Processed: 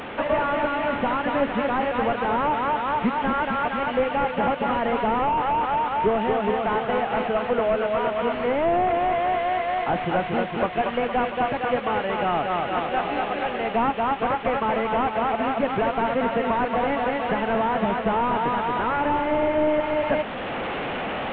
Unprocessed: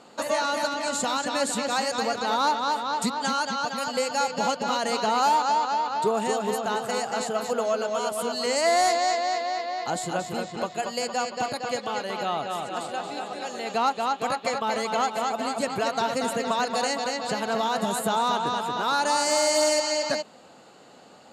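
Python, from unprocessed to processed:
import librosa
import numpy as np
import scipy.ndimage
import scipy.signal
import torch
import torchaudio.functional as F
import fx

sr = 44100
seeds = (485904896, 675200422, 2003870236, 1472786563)

p1 = fx.delta_mod(x, sr, bps=16000, step_db=-33.5)
p2 = fx.rider(p1, sr, range_db=10, speed_s=0.5)
p3 = p1 + (p2 * librosa.db_to_amplitude(2.0))
y = p3 * librosa.db_to_amplitude(-2.5)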